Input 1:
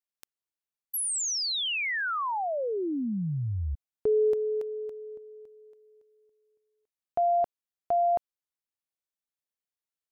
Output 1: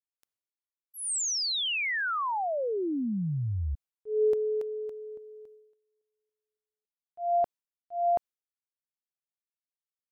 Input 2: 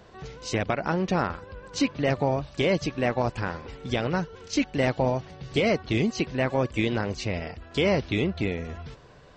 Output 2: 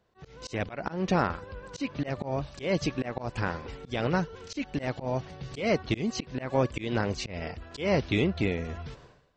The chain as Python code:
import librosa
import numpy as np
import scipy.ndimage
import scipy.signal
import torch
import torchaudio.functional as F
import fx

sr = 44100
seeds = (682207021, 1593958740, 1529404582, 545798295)

y = fx.gate_hold(x, sr, open_db=-39.0, close_db=-47.0, hold_ms=71.0, range_db=-20, attack_ms=0.13, release_ms=295.0)
y = fx.auto_swell(y, sr, attack_ms=187.0)